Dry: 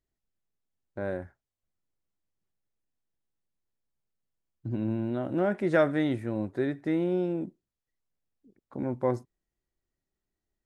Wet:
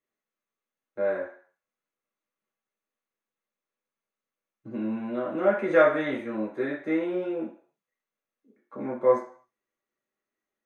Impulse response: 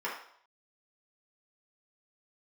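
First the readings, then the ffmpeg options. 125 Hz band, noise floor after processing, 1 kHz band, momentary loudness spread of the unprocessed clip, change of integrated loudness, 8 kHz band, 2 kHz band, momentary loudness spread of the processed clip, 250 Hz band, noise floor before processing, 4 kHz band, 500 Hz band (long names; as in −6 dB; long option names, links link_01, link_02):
−10.5 dB, below −85 dBFS, +5.5 dB, 15 LU, +3.0 dB, can't be measured, +5.5 dB, 17 LU, −1.0 dB, below −85 dBFS, +0.5 dB, +5.0 dB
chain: -filter_complex "[1:a]atrim=start_sample=2205,asetrate=52920,aresample=44100[link_01];[0:a][link_01]afir=irnorm=-1:irlink=0"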